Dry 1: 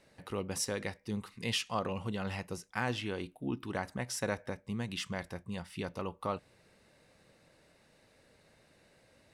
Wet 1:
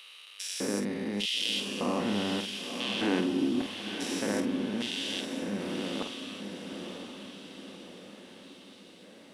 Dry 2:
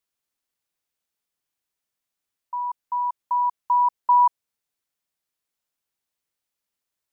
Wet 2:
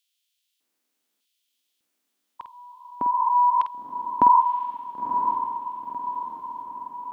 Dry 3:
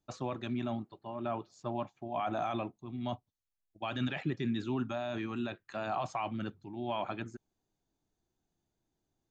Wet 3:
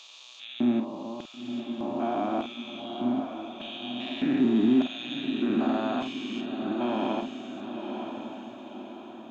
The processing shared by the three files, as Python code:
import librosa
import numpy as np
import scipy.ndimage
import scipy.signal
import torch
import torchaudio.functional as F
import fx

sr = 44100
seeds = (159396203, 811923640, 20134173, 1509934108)

p1 = fx.spec_steps(x, sr, hold_ms=400)
p2 = fx.filter_lfo_highpass(p1, sr, shape='square', hz=0.83, low_hz=260.0, high_hz=3200.0, q=3.1)
p3 = fx.doubler(p2, sr, ms=49.0, db=-8.0)
p4 = p3 + fx.echo_diffused(p3, sr, ms=995, feedback_pct=51, wet_db=-6.5, dry=0)
y = p4 * librosa.db_to_amplitude(7.0)